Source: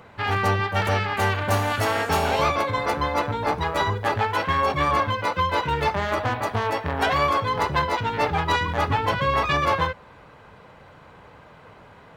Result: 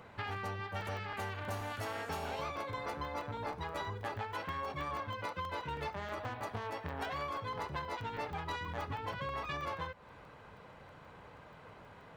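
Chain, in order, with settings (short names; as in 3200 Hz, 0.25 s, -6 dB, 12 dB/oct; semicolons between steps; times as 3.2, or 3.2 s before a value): compressor 5:1, threshold -31 dBFS, peak gain reduction 13 dB; crackling interface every 0.16 s, samples 64, zero, from 0.81; gain -6.5 dB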